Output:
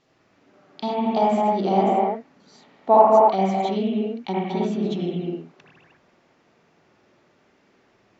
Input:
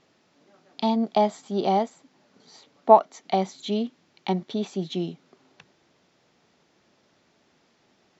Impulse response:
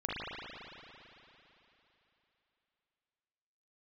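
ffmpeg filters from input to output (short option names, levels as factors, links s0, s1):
-filter_complex "[1:a]atrim=start_sample=2205,afade=t=out:st=0.31:d=0.01,atrim=end_sample=14112,asetrate=31752,aresample=44100[s0];[0:a][s0]afir=irnorm=-1:irlink=0,volume=0.708"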